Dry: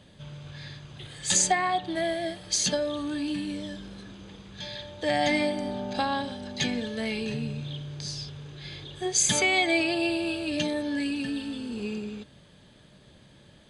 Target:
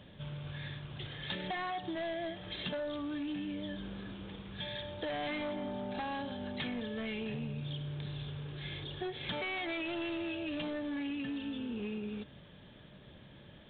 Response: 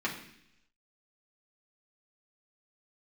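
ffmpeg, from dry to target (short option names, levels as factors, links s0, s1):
-af "aresample=8000,asoftclip=type=hard:threshold=0.0422,aresample=44100,acompressor=threshold=0.0158:ratio=6"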